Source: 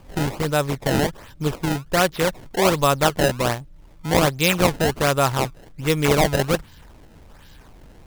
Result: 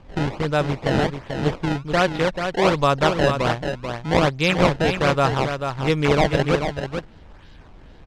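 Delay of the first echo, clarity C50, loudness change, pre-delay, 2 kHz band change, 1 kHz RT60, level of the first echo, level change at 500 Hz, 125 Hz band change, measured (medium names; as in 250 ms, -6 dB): 438 ms, no reverb, 0.0 dB, no reverb, +0.5 dB, no reverb, -7.0 dB, +1.0 dB, +1.0 dB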